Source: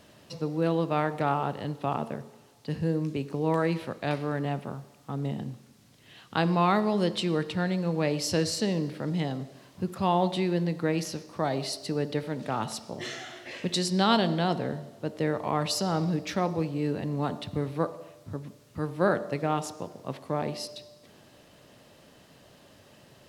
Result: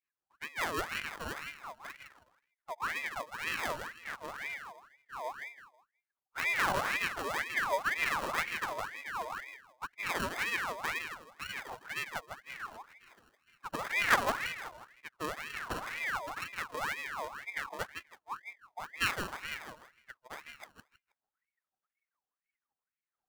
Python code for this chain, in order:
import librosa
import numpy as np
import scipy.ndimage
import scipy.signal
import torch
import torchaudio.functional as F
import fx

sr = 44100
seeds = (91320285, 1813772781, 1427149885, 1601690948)

p1 = fx.bin_expand(x, sr, power=3.0)
p2 = fx.low_shelf(p1, sr, hz=260.0, db=11.5, at=(7.39, 8.31))
p3 = fx.level_steps(p2, sr, step_db=24)
p4 = p2 + (p3 * 10.0 ** (-3.0 / 20.0))
p5 = fx.graphic_eq_31(p4, sr, hz=(100, 800, 3150), db=(9, -4, -5))
p6 = fx.sample_hold(p5, sr, seeds[0], rate_hz=1400.0, jitter_pct=0)
p7 = p6 + fx.echo_feedback(p6, sr, ms=160, feedback_pct=25, wet_db=-6.5, dry=0)
y = fx.ring_lfo(p7, sr, carrier_hz=1500.0, swing_pct=50, hz=2.0)